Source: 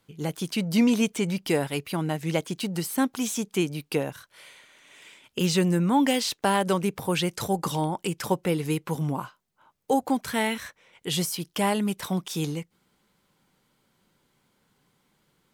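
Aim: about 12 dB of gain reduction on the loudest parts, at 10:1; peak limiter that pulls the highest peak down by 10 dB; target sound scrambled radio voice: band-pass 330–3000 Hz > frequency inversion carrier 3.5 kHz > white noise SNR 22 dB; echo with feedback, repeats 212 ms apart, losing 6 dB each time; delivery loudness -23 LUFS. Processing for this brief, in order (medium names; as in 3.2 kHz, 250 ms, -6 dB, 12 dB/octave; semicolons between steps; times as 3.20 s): compression 10:1, threshold -29 dBFS; peak limiter -26.5 dBFS; band-pass 330–3000 Hz; feedback delay 212 ms, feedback 50%, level -6 dB; frequency inversion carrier 3.5 kHz; white noise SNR 22 dB; trim +14.5 dB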